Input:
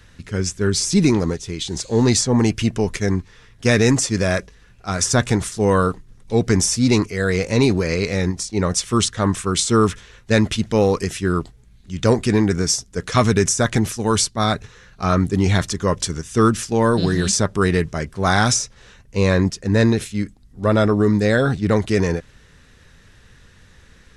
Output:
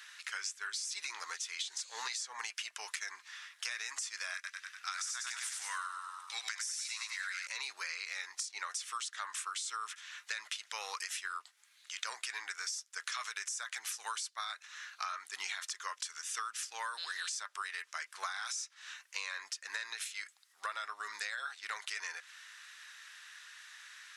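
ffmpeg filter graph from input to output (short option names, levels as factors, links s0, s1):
-filter_complex "[0:a]asettb=1/sr,asplit=3[s0][s1][s2];[s0]atrim=end=4.344[s3];[s1]atrim=start=4.34:end=7.47,asetpts=PTS-STARTPTS,afade=t=in:d=0.004:c=qsin,afade=t=out:st=3.126:d=0.004:c=qsin,highpass=1300,asplit=7[s4][s5][s6][s7][s8][s9][s10];[s5]adelay=98,afreqshift=-31,volume=0.531[s11];[s6]adelay=196,afreqshift=-62,volume=0.254[s12];[s7]adelay=294,afreqshift=-93,volume=0.122[s13];[s8]adelay=392,afreqshift=-124,volume=0.0589[s14];[s9]adelay=490,afreqshift=-155,volume=0.0282[s15];[s10]adelay=588,afreqshift=-186,volume=0.0135[s16];[s4][s11][s12][s13][s14][s15][s16]amix=inputs=7:normalize=0,atrim=end_sample=138033[s17];[s2]atrim=start=7.466[s18];[s3][s17]acrossfade=d=0.004:c1=hsin:c2=qsin[s19];[s19][s18]acrossfade=d=0.004:c1=qsin:c2=hsin,highpass=f=1200:w=0.5412,highpass=f=1200:w=1.3066,alimiter=limit=0.158:level=0:latency=1:release=23,acompressor=threshold=0.0112:ratio=12,volume=1.33"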